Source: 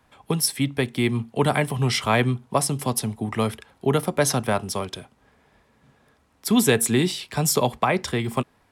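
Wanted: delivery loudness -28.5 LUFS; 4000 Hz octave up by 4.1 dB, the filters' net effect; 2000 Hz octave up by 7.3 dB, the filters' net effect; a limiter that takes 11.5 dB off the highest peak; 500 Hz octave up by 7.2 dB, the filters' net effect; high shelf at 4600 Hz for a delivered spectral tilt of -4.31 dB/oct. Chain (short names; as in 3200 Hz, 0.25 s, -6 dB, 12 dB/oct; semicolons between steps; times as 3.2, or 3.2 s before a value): bell 500 Hz +8.5 dB; bell 2000 Hz +8 dB; bell 4000 Hz +5.5 dB; high shelf 4600 Hz -5 dB; gain -5 dB; limiter -16.5 dBFS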